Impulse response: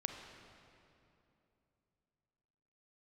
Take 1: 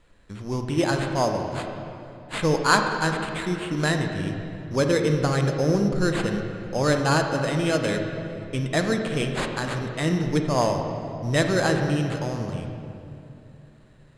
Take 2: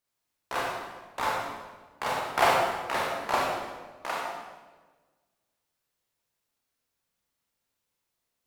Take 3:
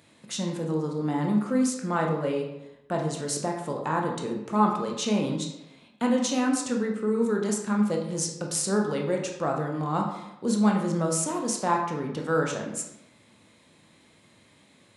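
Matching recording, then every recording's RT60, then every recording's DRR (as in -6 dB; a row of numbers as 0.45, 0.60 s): 1; 2.9, 1.3, 0.90 s; 4.0, -3.5, 1.0 dB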